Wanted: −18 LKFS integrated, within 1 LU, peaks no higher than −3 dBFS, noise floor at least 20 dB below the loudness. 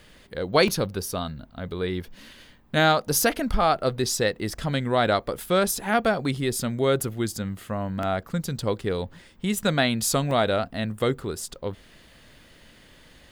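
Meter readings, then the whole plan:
number of dropouts 3; longest dropout 2.0 ms; integrated loudness −25.0 LKFS; sample peak −5.5 dBFS; target loudness −18.0 LKFS
→ repair the gap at 0:00.68/0:08.03/0:10.31, 2 ms
level +7 dB
brickwall limiter −3 dBFS

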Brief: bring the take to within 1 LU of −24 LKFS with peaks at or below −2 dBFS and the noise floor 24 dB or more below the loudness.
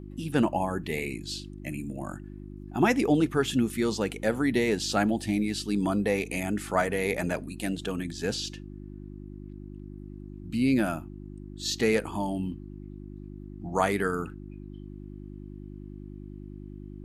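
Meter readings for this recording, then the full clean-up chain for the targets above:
mains hum 50 Hz; hum harmonics up to 350 Hz; level of the hum −39 dBFS; integrated loudness −28.5 LKFS; sample peak −9.0 dBFS; target loudness −24.0 LKFS
→ hum removal 50 Hz, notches 7
level +4.5 dB

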